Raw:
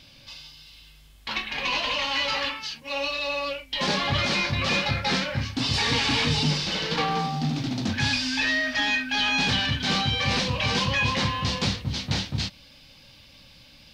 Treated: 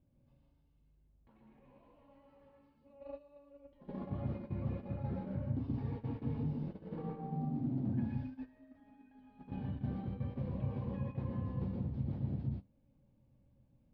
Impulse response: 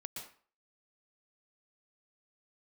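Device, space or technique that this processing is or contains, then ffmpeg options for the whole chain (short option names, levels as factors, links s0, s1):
television next door: -filter_complex "[0:a]acompressor=threshold=0.0141:ratio=5,lowpass=450[s0];[1:a]atrim=start_sample=2205[s1];[s0][s1]afir=irnorm=-1:irlink=0,agate=range=0.158:threshold=0.00501:ratio=16:detection=peak,volume=2"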